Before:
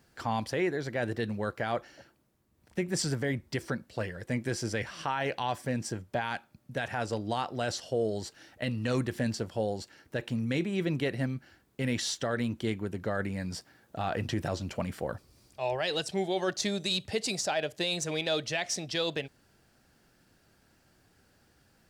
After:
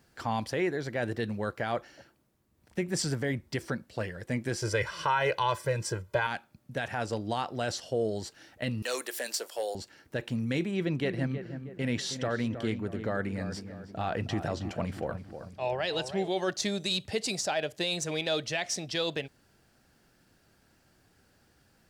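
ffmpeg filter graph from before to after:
ffmpeg -i in.wav -filter_complex "[0:a]asettb=1/sr,asplit=3[link_01][link_02][link_03];[link_01]atrim=end=4.624[link_04];[link_02]atrim=start=4.62:end=6.27,asetpts=PTS-STARTPTS,afade=type=in:duration=0.004:curve=qsin,afade=type=out:start_time=1.646:duration=0.004:curve=qsin,equalizer=frequency=1200:width=1.7:gain=4,aecho=1:1:2:0.97,atrim=end_sample=72765[link_05];[link_03]atrim=start=6.266[link_06];[link_04][link_05]acrossfade=duration=0.004:curve1=hsin:curve2=qsin[link_07];[link_07][link_06]acrossfade=duration=0.004:curve1=qsin:curve2=hsin,asettb=1/sr,asplit=3[link_08][link_09][link_10];[link_08]atrim=end=8.824[link_11];[link_09]atrim=start=8.82:end=9.75,asetpts=PTS-STARTPTS,afade=type=in:duration=0.004:curve=qsin,afade=type=out:start_time=0.926:duration=0.004:curve=qsin,highpass=frequency=420:width=0.5412,highpass=frequency=420:width=1.3066,aemphasis=mode=production:type=75fm,asoftclip=type=hard:threshold=-25dB[link_12];[link_10]atrim=start=9.746[link_13];[link_11][link_12]acrossfade=duration=0.004:curve1=hsin:curve2=qsin[link_14];[link_14][link_13]acrossfade=duration=0.004:curve1=qsin:curve2=hsin,asettb=1/sr,asplit=3[link_15][link_16][link_17];[link_15]atrim=end=10.714[link_18];[link_16]atrim=start=10.71:end=16.28,asetpts=PTS-STARTPTS,afade=type=in:duration=0.004:curve=qsin,afade=type=out:start_time=5.566:duration=0.004:curve=qsin,highshelf=frequency=8500:gain=-10.5,asplit=2[link_19][link_20];[link_20]adelay=317,lowpass=frequency=1500:poles=1,volume=-9dB,asplit=2[link_21][link_22];[link_22]adelay=317,lowpass=frequency=1500:poles=1,volume=0.49,asplit=2[link_23][link_24];[link_24]adelay=317,lowpass=frequency=1500:poles=1,volume=0.49,asplit=2[link_25][link_26];[link_26]adelay=317,lowpass=frequency=1500:poles=1,volume=0.49,asplit=2[link_27][link_28];[link_28]adelay=317,lowpass=frequency=1500:poles=1,volume=0.49,asplit=2[link_29][link_30];[link_30]adelay=317,lowpass=frequency=1500:poles=1,volume=0.49[link_31];[link_19][link_21][link_23][link_25][link_27][link_29][link_31]amix=inputs=7:normalize=0,atrim=end_sample=245637[link_32];[link_17]atrim=start=16.276[link_33];[link_18][link_32]acrossfade=duration=0.004:curve1=hsin:curve2=qsin[link_34];[link_34][link_33]acrossfade=duration=0.004:curve1=qsin:curve2=hsin" out.wav

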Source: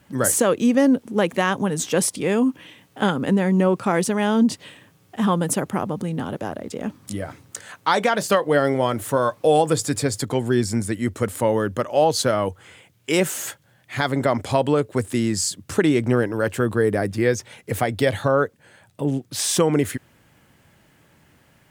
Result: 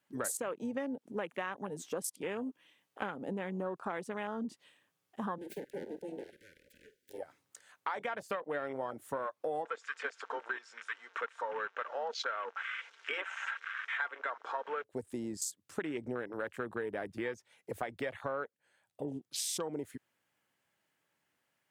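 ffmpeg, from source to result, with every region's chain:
ffmpeg -i in.wav -filter_complex "[0:a]asettb=1/sr,asplit=3[link_01][link_02][link_03];[link_01]atrim=end=5.384[link_04];[link_02]atrim=start=5.38:end=7.18,asetpts=PTS-STARTPTS,afade=type=in:duration=0.004:curve=qsin,afade=type=out:start_time=1.796:duration=0.004:curve=qsin,aeval=exprs='abs(val(0))':channel_layout=same,asuperstop=centerf=920:order=20:qfactor=1,asplit=2[link_05][link_06];[link_06]adelay=49,volume=-13dB[link_07];[link_05][link_07]amix=inputs=2:normalize=0,atrim=end_sample=79380[link_08];[link_03]atrim=start=7.176[link_09];[link_04][link_08]acrossfade=duration=0.004:curve1=hsin:curve2=qsin[link_10];[link_10][link_09]acrossfade=duration=0.004:curve1=qsin:curve2=hsin,asettb=1/sr,asplit=3[link_11][link_12][link_13];[link_11]atrim=end=9.654[link_14];[link_12]atrim=start=9.65:end=14.84,asetpts=PTS-STARTPTS,afade=type=in:duration=0.004:curve=qsin,afade=type=out:start_time=5.186:duration=0.004:curve=qsin,aeval=exprs='val(0)+0.5*0.0447*sgn(val(0))':channel_layout=same,highpass=frequency=490:width=0.5412,highpass=frequency=490:width=1.3066,equalizer=frequency=660:width_type=q:width=4:gain=-10,equalizer=frequency=1500:width_type=q:width=4:gain=10,equalizer=frequency=4600:width_type=q:width=4:gain=-8,lowpass=frequency=5500:width=0.5412,lowpass=frequency=5500:width=1.3066,aecho=1:1:4.4:0.37,atrim=end_sample=228879[link_15];[link_13]atrim=start=14.836[link_16];[link_14][link_15]acrossfade=duration=0.004:curve1=hsin:curve2=qsin[link_17];[link_17][link_16]acrossfade=duration=0.004:curve1=qsin:curve2=hsin,highpass=frequency=670:poles=1,afwtdn=0.0355,acompressor=threshold=-32dB:ratio=4,volume=-3.5dB" out.wav

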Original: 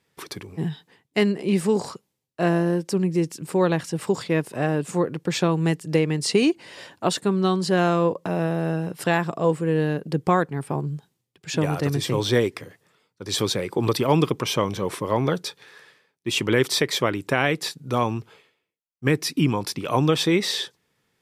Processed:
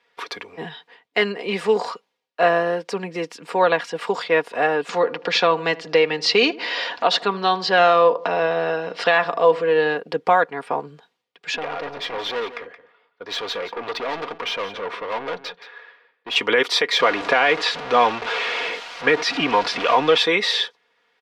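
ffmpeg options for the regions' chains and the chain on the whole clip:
ffmpeg -i in.wav -filter_complex "[0:a]asettb=1/sr,asplit=3[link_01][link_02][link_03];[link_01]atrim=end=4.894[link_04];[link_02]atrim=start=4.89:end=9.95,asetpts=PTS-STARTPTS,afade=type=in:duration=0.004:curve=qsin,afade=type=out:start_time=5.056:duration=0.004:curve=qsin,acompressor=mode=upward:threshold=-24dB:ratio=2.5:attack=3.2:release=140:knee=2.83:detection=peak,lowpass=frequency=5100:width_type=q:width=1.7,asplit=2[link_05][link_06];[link_06]adelay=78,lowpass=frequency=1100:poles=1,volume=-17dB,asplit=2[link_07][link_08];[link_08]adelay=78,lowpass=frequency=1100:poles=1,volume=0.53,asplit=2[link_09][link_10];[link_10]adelay=78,lowpass=frequency=1100:poles=1,volume=0.53,asplit=2[link_11][link_12];[link_12]adelay=78,lowpass=frequency=1100:poles=1,volume=0.53,asplit=2[link_13][link_14];[link_14]adelay=78,lowpass=frequency=1100:poles=1,volume=0.53[link_15];[link_05][link_07][link_09][link_11][link_13][link_15]amix=inputs=6:normalize=0,atrim=end_sample=223146[link_16];[link_03]atrim=start=9.946[link_17];[link_04][link_16]acrossfade=duration=0.004:curve1=hsin:curve2=qsin[link_18];[link_18][link_17]acrossfade=duration=0.004:curve1=qsin:curve2=hsin,asettb=1/sr,asplit=3[link_19][link_20][link_21];[link_19]atrim=end=11.564[link_22];[link_20]atrim=start=11.56:end=16.36,asetpts=PTS-STARTPTS,afade=type=in:duration=0.004:curve=qsin,afade=type=out:start_time=4.796:duration=0.004:curve=qsin,adynamicsmooth=sensitivity=3.5:basefreq=2900,aeval=exprs='(tanh(25.1*val(0)+0.25)-tanh(0.25))/25.1':channel_layout=same,aecho=1:1:173:0.211,atrim=end_sample=211680[link_23];[link_21]atrim=start=16.356[link_24];[link_22][link_23]acrossfade=duration=0.004:curve1=hsin:curve2=qsin[link_25];[link_25][link_24]acrossfade=duration=0.004:curve1=qsin:curve2=hsin,asettb=1/sr,asplit=3[link_26][link_27][link_28];[link_26]atrim=end=16.994[link_29];[link_27]atrim=start=16.99:end=20.18,asetpts=PTS-STARTPTS,afade=type=in:duration=0.004:curve=qsin,afade=type=out:start_time=3.186:duration=0.004:curve=qsin,aeval=exprs='val(0)+0.5*0.0562*sgn(val(0))':channel_layout=same,lowpass=6300[link_30];[link_28]atrim=start=20.176[link_31];[link_29][link_30]acrossfade=duration=0.004:curve1=hsin:curve2=qsin[link_32];[link_32][link_31]acrossfade=duration=0.004:curve1=qsin:curve2=hsin,acrossover=split=450 4400:gain=0.0708 1 0.0708[link_33][link_34][link_35];[link_33][link_34][link_35]amix=inputs=3:normalize=0,aecho=1:1:4.2:0.53,alimiter=level_in=12.5dB:limit=-1dB:release=50:level=0:latency=1,volume=-4.5dB" out.wav

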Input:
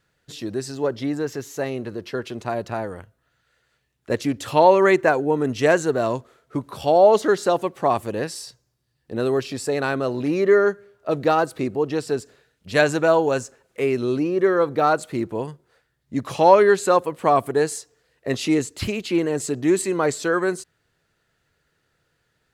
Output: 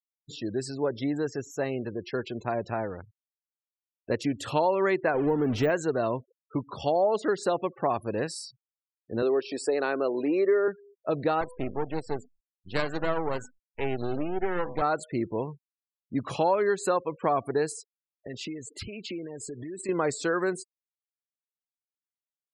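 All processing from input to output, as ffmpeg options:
ffmpeg -i in.wav -filter_complex "[0:a]asettb=1/sr,asplit=3[link_01][link_02][link_03];[link_01]atrim=end=5.144[link_04];[link_02]atrim=start=5.14:end=5.7,asetpts=PTS-STARTPTS,afade=type=in:duration=0.004:curve=qsin,afade=type=out:start_time=0.556:duration=0.004:curve=qsin,aeval=exprs='val(0)+0.5*0.0562*sgn(val(0))':channel_layout=same,deesser=0.55,lowshelf=frequency=490:gain=3[link_05];[link_03]atrim=start=5.696[link_06];[link_04][link_05]acrossfade=duration=0.004:curve1=hsin:curve2=qsin[link_07];[link_07][link_06]acrossfade=duration=0.004:curve1=qsin:curve2=hsin,asettb=1/sr,asplit=3[link_08][link_09][link_10];[link_08]atrim=end=9.224[link_11];[link_09]atrim=start=9.22:end=10.68,asetpts=PTS-STARTPTS,afade=type=in:duration=0.004:curve=qsin,afade=type=out:start_time=1.456:duration=0.004:curve=qsin,highpass=frequency=360:width_type=q:width=1.5,highshelf=frequency=6600:gain=-3[link_12];[link_10]atrim=start=10.676[link_13];[link_11][link_12]acrossfade=duration=0.004:curve1=hsin:curve2=qsin[link_14];[link_14][link_13]acrossfade=duration=0.004:curve1=qsin:curve2=hsin,asettb=1/sr,asplit=3[link_15][link_16][link_17];[link_15]atrim=end=11.414[link_18];[link_16]atrim=start=11.41:end=14.82,asetpts=PTS-STARTPTS,afade=type=in:duration=0.004:curve=qsin,afade=type=out:start_time=3.406:duration=0.004:curve=qsin,bandreject=frequency=249.3:width_type=h:width=4,bandreject=frequency=498.6:width_type=h:width=4,bandreject=frequency=747.9:width_type=h:width=4,bandreject=frequency=997.2:width_type=h:width=4,bandreject=frequency=1246.5:width_type=h:width=4,bandreject=frequency=1495.8:width_type=h:width=4,bandreject=frequency=1745.1:width_type=h:width=4,bandreject=frequency=1994.4:width_type=h:width=4,bandreject=frequency=2243.7:width_type=h:width=4,bandreject=frequency=2493:width_type=h:width=4,bandreject=frequency=2742.3:width_type=h:width=4,bandreject=frequency=2991.6:width_type=h:width=4,bandreject=frequency=3240.9:width_type=h:width=4,bandreject=frequency=3490.2:width_type=h:width=4,bandreject=frequency=3739.5:width_type=h:width=4,bandreject=frequency=3988.8:width_type=h:width=4,bandreject=frequency=4238.1:width_type=h:width=4,bandreject=frequency=4487.4:width_type=h:width=4,bandreject=frequency=4736.7:width_type=h:width=4,bandreject=frequency=4986:width_type=h:width=4,bandreject=frequency=5235.3:width_type=h:width=4,bandreject=frequency=5484.6:width_type=h:width=4,bandreject=frequency=5733.9:width_type=h:width=4,bandreject=frequency=5983.2:width_type=h:width=4,bandreject=frequency=6232.5:width_type=h:width=4,bandreject=frequency=6481.8:width_type=h:width=4,bandreject=frequency=6731.1:width_type=h:width=4,bandreject=frequency=6980.4:width_type=h:width=4,bandreject=frequency=7229.7:width_type=h:width=4,bandreject=frequency=7479:width_type=h:width=4,bandreject=frequency=7728.3:width_type=h:width=4,bandreject=frequency=7977.6:width_type=h:width=4,bandreject=frequency=8226.9:width_type=h:width=4,bandreject=frequency=8476.2:width_type=h:width=4,bandreject=frequency=8725.5:width_type=h:width=4,bandreject=frequency=8974.8:width_type=h:width=4,bandreject=frequency=9224.1:width_type=h:width=4,bandreject=frequency=9473.4:width_type=h:width=4,bandreject=frequency=9722.7:width_type=h:width=4,aeval=exprs='max(val(0),0)':channel_layout=same[link_19];[link_17]atrim=start=14.816[link_20];[link_18][link_19]acrossfade=duration=0.004:curve1=hsin:curve2=qsin[link_21];[link_21][link_20]acrossfade=duration=0.004:curve1=qsin:curve2=hsin,asettb=1/sr,asplit=3[link_22][link_23][link_24];[link_22]atrim=end=17.714[link_25];[link_23]atrim=start=17.71:end=19.89,asetpts=PTS-STARTPTS,afade=type=in:duration=0.004:curve=qsin,afade=type=out:start_time=2.176:duration=0.004:curve=qsin,acompressor=threshold=-31dB:ratio=12:attack=3.2:release=140:knee=1:detection=peak,aphaser=in_gain=1:out_gain=1:delay=2.5:decay=0.23:speed=1.4:type=sinusoidal[link_26];[link_24]atrim=start=19.886[link_27];[link_25][link_26]acrossfade=duration=0.004:curve1=hsin:curve2=qsin[link_28];[link_28][link_27]acrossfade=duration=0.004:curve1=qsin:curve2=hsin,bandreject=frequency=6100:width=20,acompressor=threshold=-20dB:ratio=3,afftfilt=real='re*gte(hypot(re,im),0.0126)':imag='im*gte(hypot(re,im),0.0126)':win_size=1024:overlap=0.75,volume=-3dB" out.wav

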